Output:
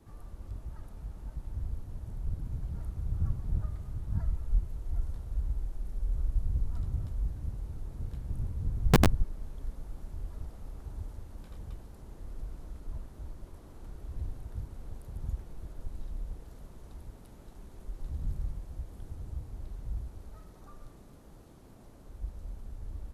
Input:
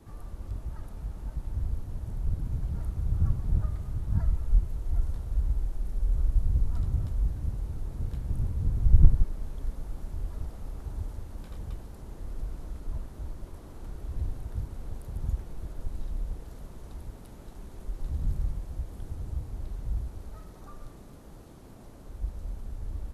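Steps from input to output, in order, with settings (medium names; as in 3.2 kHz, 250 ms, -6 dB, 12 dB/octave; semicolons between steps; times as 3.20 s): integer overflow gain 8 dB; trim -5 dB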